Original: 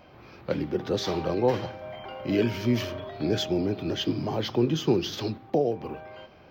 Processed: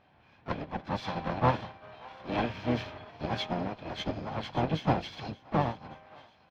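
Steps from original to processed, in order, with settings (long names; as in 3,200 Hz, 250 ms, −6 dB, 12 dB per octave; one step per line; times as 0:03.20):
lower of the sound and its delayed copy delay 1.2 ms
high-pass filter 80 Hz 6 dB per octave
high-shelf EQ 2,500 Hz +9 dB
notch filter 4,700 Hz, Q 23
pitch-shifted copies added −7 semitones −11 dB, +4 semitones −10 dB, +5 semitones −10 dB
high-frequency loss of the air 280 metres
feedback echo with a high-pass in the loop 576 ms, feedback 58%, high-pass 850 Hz, level −14 dB
expander for the loud parts 1.5 to 1, over −43 dBFS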